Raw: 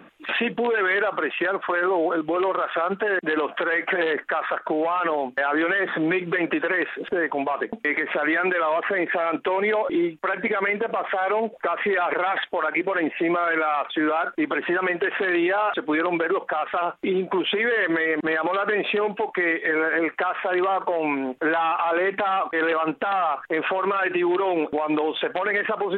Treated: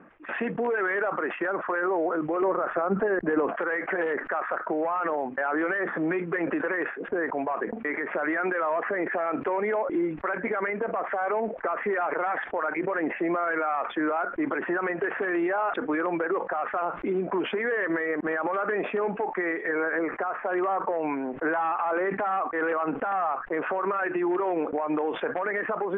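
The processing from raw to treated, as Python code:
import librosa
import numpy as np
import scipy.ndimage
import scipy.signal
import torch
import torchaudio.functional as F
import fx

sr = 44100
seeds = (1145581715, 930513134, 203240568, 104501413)

y = fx.tilt_eq(x, sr, slope=-3.0, at=(2.42, 3.49))
y = fx.high_shelf(y, sr, hz=2800.0, db=-11.5, at=(20.02, 20.45))
y = scipy.signal.sosfilt(scipy.signal.butter(4, 1900.0, 'lowpass', fs=sr, output='sos'), y)
y = fx.sustainer(y, sr, db_per_s=100.0)
y = y * 10.0 ** (-4.0 / 20.0)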